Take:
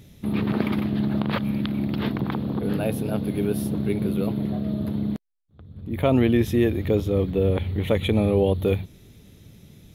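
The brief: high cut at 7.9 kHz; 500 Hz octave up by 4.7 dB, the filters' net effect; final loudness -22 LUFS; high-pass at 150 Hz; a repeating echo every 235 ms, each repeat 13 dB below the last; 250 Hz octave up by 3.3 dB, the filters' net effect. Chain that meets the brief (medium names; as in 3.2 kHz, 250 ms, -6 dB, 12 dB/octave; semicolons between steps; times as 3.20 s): high-pass 150 Hz; low-pass 7.9 kHz; peaking EQ 250 Hz +4 dB; peaking EQ 500 Hz +4.5 dB; feedback delay 235 ms, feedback 22%, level -13 dB; trim -1 dB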